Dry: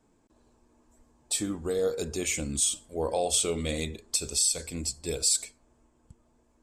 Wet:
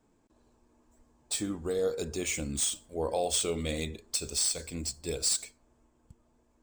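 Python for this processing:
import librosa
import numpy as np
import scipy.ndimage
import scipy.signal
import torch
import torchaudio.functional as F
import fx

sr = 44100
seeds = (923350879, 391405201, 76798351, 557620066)

y = scipy.ndimage.median_filter(x, 3, mode='constant')
y = y * 10.0 ** (-2.0 / 20.0)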